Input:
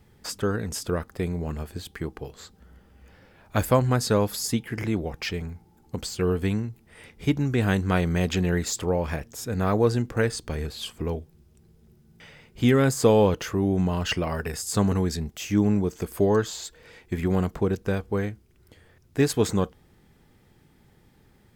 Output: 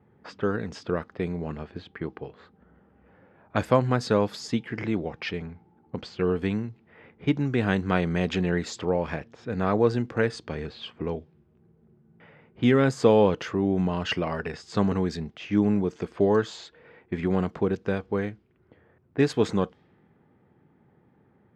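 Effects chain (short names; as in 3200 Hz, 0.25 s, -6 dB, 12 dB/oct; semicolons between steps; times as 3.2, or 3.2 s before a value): low-pass opened by the level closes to 1300 Hz, open at -22.5 dBFS; BPF 130–4000 Hz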